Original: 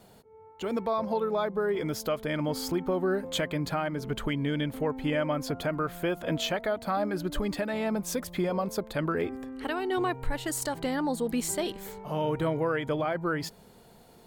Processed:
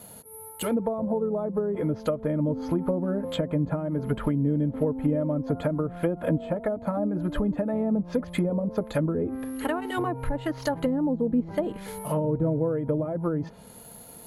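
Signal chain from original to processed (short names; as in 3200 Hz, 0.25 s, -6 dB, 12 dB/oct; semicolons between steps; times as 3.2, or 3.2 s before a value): careless resampling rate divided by 4×, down filtered, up zero stuff; in parallel at -8 dB: short-mantissa float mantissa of 2-bit; on the sum: notch comb 380 Hz; treble ducked by the level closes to 450 Hz, closed at -16.5 dBFS; gain +3.5 dB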